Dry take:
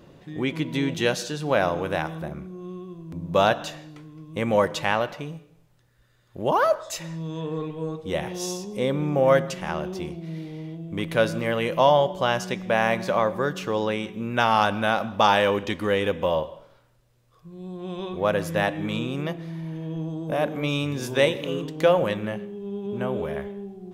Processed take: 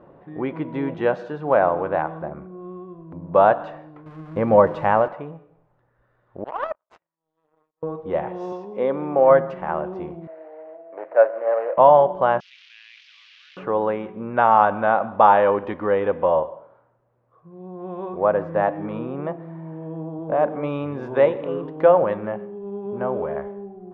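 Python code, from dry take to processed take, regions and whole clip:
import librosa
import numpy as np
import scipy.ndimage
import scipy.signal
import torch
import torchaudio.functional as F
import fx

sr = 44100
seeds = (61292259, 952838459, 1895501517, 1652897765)

y = fx.chain(x, sr, fx.crossing_spikes(level_db=-24.0),
    fx.low_shelf(hz=280.0, db=10.0),
    fx.hum_notches(base_hz=60, count=7), at=(4.06, 5.08))
y = fx.chain(y, sr, fx.tilt_eq(slope=3.0),
    fx.power_curve(exponent=3.0), at=(6.44, 7.83))
y = fx.chain(y, sr, fx.bandpass_edges(low_hz=210.0, high_hz=5200.0),
    fx.high_shelf(hz=3500.0, db=8.5), at=(8.52, 9.3))
y = fx.chain(y, sr, fx.median_filter(points=25),
    fx.cabinet(low_hz=490.0, low_slope=24, high_hz=4200.0, hz=(630.0, 1100.0, 1800.0, 3400.0), db=(9, -3, 5, -9)), at=(10.27, 11.78))
y = fx.chain(y, sr, fx.delta_mod(bps=32000, step_db=-22.0),
    fx.steep_highpass(hz=2800.0, slope=36),
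    fx.env_flatten(amount_pct=100), at=(12.4, 13.57))
y = fx.chain(y, sr, fx.highpass(hz=79.0, slope=12),
    fx.high_shelf(hz=2500.0, db=-6.5), at=(16.49, 20.19))
y = scipy.signal.sosfilt(scipy.signal.butter(2, 1400.0, 'lowpass', fs=sr, output='sos'), y)
y = fx.peak_eq(y, sr, hz=860.0, db=12.5, octaves=2.8)
y = y * librosa.db_to_amplitude(-5.5)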